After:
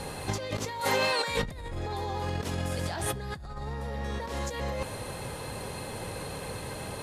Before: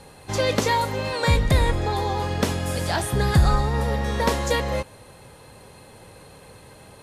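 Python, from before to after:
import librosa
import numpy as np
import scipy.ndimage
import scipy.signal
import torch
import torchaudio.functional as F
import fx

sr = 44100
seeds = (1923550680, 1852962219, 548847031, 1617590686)

p1 = fx.highpass(x, sr, hz=750.0, slope=6, at=(0.8, 1.43))
p2 = 10.0 ** (-22.5 / 20.0) * np.tanh(p1 / 10.0 ** (-22.5 / 20.0))
p3 = p1 + F.gain(torch.from_numpy(p2), -10.5).numpy()
p4 = fx.over_compress(p3, sr, threshold_db=-31.0, ratio=-1.0)
p5 = fx.high_shelf(p4, sr, hz=8800.0, db=-5.0, at=(2.5, 4.37))
y = F.gain(torch.from_numpy(p5), -2.0).numpy()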